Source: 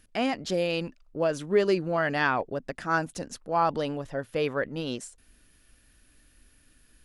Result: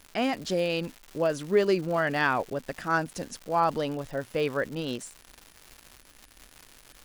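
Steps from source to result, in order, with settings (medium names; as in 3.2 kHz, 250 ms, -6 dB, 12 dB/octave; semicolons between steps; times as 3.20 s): crackle 300 per s -36 dBFS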